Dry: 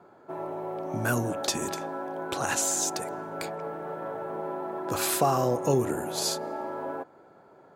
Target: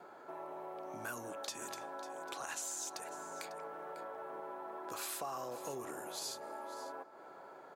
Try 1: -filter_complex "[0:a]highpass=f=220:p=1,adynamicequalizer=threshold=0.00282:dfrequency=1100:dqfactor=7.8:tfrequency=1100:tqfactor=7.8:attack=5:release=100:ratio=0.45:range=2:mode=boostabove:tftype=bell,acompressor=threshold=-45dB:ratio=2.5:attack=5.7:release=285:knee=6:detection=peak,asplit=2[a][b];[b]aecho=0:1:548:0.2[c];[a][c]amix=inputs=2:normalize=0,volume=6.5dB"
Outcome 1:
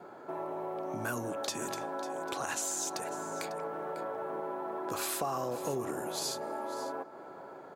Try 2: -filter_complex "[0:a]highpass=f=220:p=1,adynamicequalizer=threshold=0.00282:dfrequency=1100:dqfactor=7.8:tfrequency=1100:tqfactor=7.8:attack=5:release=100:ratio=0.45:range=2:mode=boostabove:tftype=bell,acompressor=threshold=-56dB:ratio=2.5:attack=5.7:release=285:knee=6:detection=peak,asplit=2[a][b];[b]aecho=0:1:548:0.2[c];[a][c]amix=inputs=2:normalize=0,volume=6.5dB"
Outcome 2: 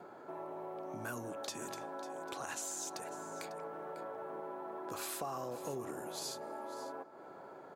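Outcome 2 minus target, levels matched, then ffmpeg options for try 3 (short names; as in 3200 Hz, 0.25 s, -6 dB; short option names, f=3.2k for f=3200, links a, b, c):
250 Hz band +4.0 dB
-filter_complex "[0:a]highpass=f=790:p=1,adynamicequalizer=threshold=0.00282:dfrequency=1100:dqfactor=7.8:tfrequency=1100:tqfactor=7.8:attack=5:release=100:ratio=0.45:range=2:mode=boostabove:tftype=bell,acompressor=threshold=-56dB:ratio=2.5:attack=5.7:release=285:knee=6:detection=peak,asplit=2[a][b];[b]aecho=0:1:548:0.2[c];[a][c]amix=inputs=2:normalize=0,volume=6.5dB"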